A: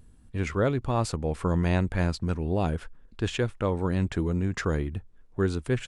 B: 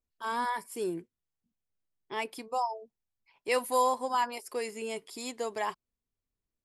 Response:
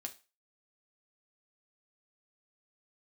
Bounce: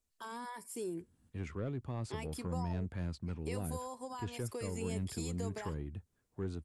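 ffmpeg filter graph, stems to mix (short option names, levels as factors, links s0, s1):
-filter_complex "[0:a]highpass=f=66:w=0.5412,highpass=f=66:w=1.3066,asoftclip=type=tanh:threshold=0.133,adelay=1000,volume=0.316[s0];[1:a]equalizer=f=8100:t=o:w=1.2:g=8.5,acompressor=threshold=0.0141:ratio=3,alimiter=level_in=1.88:limit=0.0631:level=0:latency=1,volume=0.531,volume=1.26[s1];[s0][s1]amix=inputs=2:normalize=0,acrossover=split=380[s2][s3];[s3]acompressor=threshold=0.00126:ratio=1.5[s4];[s2][s4]amix=inputs=2:normalize=0"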